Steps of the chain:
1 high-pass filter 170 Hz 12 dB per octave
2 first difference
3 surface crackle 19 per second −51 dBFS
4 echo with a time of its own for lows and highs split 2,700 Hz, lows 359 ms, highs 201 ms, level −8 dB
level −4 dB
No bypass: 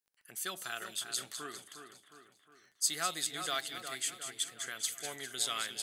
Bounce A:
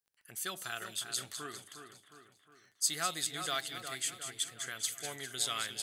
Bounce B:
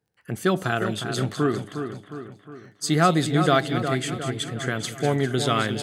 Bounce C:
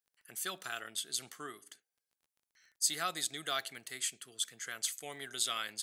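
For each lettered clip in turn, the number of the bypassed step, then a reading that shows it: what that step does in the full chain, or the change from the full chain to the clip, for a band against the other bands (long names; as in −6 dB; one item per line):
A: 1, 125 Hz band +5.0 dB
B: 2, 8 kHz band −19.5 dB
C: 4, echo-to-direct ratio −6.5 dB to none audible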